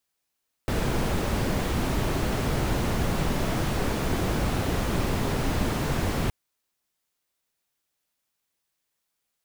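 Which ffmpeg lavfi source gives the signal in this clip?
-f lavfi -i "anoisesrc=c=brown:a=0.263:d=5.62:r=44100:seed=1"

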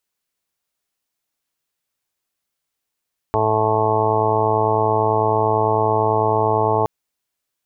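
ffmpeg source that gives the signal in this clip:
-f lavfi -i "aevalsrc='0.0631*sin(2*PI*109*t)+0.0224*sin(2*PI*218*t)+0.0355*sin(2*PI*327*t)+0.0944*sin(2*PI*436*t)+0.0316*sin(2*PI*545*t)+0.075*sin(2*PI*654*t)+0.0447*sin(2*PI*763*t)+0.1*sin(2*PI*872*t)+0.0316*sin(2*PI*981*t)+0.0562*sin(2*PI*1090*t)':d=3.52:s=44100"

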